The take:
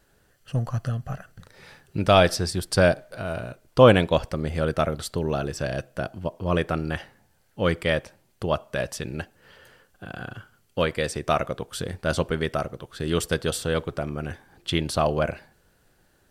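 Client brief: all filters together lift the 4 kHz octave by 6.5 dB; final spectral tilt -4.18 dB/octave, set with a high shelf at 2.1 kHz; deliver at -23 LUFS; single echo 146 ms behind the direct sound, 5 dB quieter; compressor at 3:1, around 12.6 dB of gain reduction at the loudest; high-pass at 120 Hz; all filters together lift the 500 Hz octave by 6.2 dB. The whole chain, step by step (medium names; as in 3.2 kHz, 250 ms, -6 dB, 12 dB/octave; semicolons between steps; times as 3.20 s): high-pass 120 Hz; peaking EQ 500 Hz +7 dB; treble shelf 2.1 kHz +3.5 dB; peaking EQ 4 kHz +5 dB; compression 3:1, threshold -20 dBFS; delay 146 ms -5 dB; trim +2.5 dB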